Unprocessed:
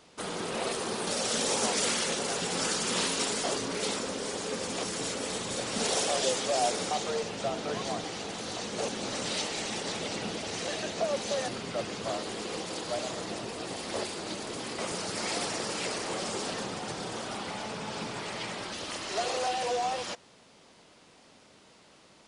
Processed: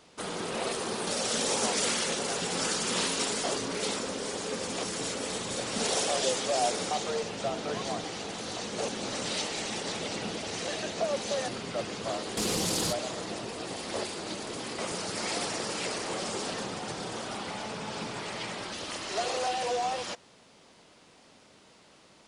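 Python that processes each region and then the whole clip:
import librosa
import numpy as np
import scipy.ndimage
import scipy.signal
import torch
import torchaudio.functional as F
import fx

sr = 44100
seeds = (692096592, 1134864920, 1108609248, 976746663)

y = fx.chain(x, sr, fx.cvsd(bps=64000),
    fx.bass_treble(bass_db=10, treble_db=9),
    fx.env_flatten(amount_pct=100), at=(12.37, 12.93))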